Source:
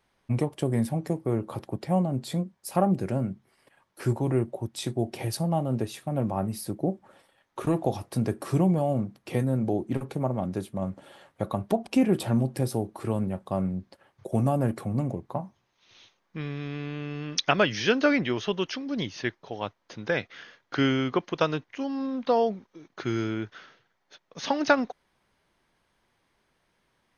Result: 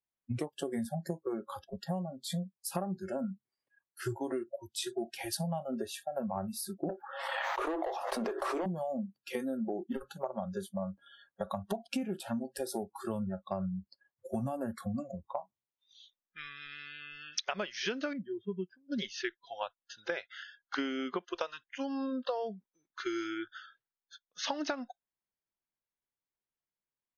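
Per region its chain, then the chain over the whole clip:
6.89–8.66 HPF 340 Hz + overdrive pedal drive 24 dB, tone 1000 Hz, clips at -13.5 dBFS + backwards sustainer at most 34 dB/s
18.13–18.92 band-pass 130 Hz, Q 0.63 + low shelf 180 Hz +3.5 dB
whole clip: spectral noise reduction 30 dB; compressor 16:1, threshold -31 dBFS

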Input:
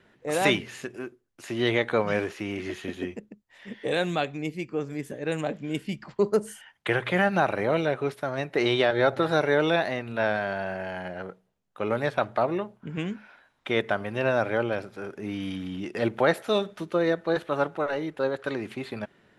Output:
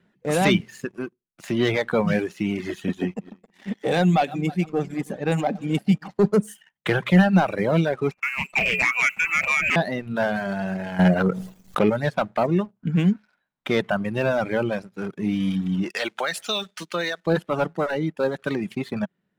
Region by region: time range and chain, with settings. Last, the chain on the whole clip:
3–6.26 regenerating reverse delay 0.157 s, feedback 50%, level -12.5 dB + HPF 93 Hz 6 dB/oct + bell 780 Hz +10 dB 0.32 oct
8.11–9.76 notches 50/100/150/200/250/300/350 Hz + inverted band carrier 2800 Hz + Doppler distortion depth 0.27 ms
10.99–11.9 transient shaper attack +8 dB, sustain -7 dB + fast leveller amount 70%
15.9–17.27 weighting filter ITU-R 468 + compressor, threshold -24 dBFS
whole clip: sample leveller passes 2; bell 180 Hz +13 dB 0.68 oct; reverb removal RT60 0.95 s; gain -3.5 dB

